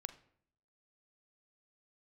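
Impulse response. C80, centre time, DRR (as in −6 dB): 18.5 dB, 5 ms, 10.5 dB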